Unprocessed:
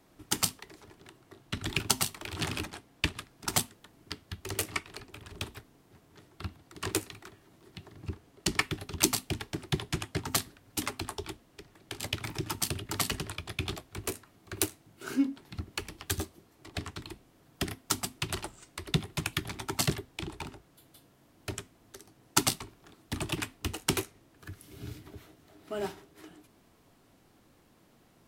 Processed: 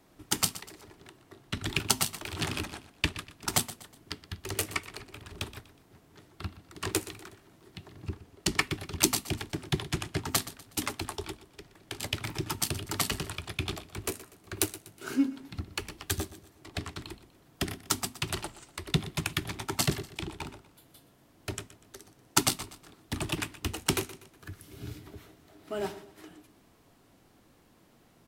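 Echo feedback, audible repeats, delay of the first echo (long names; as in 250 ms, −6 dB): 39%, 3, 122 ms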